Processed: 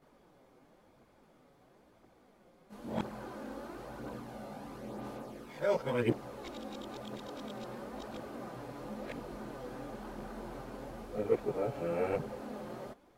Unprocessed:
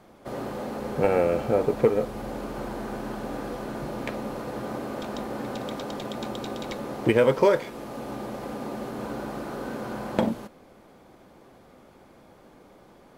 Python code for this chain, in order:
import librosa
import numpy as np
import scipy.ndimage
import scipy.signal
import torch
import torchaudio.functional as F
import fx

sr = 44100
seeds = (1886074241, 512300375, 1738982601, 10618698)

y = x[::-1].copy()
y = fx.chorus_voices(y, sr, voices=2, hz=0.49, base_ms=20, depth_ms=4.0, mix_pct=65)
y = F.gain(torch.from_numpy(y), -8.0).numpy()